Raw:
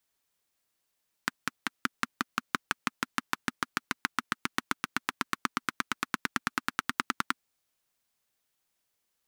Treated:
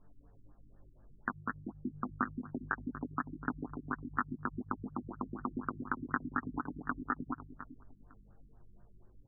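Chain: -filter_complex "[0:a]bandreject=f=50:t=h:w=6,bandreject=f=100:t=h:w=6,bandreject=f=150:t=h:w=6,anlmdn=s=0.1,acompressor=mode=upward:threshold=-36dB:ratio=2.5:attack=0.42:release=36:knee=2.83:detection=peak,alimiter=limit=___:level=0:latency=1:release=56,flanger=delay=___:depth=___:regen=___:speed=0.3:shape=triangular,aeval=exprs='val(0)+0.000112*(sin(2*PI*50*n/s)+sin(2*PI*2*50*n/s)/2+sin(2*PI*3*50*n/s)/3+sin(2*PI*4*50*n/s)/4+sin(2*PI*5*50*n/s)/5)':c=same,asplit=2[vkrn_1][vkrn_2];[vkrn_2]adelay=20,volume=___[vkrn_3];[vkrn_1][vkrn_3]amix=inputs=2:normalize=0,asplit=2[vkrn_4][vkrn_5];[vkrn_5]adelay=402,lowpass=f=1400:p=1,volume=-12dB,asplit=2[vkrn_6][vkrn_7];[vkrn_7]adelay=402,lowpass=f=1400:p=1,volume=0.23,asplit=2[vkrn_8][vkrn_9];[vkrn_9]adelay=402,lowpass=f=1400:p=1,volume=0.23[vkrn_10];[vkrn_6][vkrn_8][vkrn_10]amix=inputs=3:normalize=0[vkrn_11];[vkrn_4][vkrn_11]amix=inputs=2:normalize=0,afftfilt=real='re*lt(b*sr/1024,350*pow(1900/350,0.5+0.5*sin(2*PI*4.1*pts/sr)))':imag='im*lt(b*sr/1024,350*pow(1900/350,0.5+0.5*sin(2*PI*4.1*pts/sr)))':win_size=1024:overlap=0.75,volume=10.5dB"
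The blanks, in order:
-16dB, 6.8, 2.1, -21, -3dB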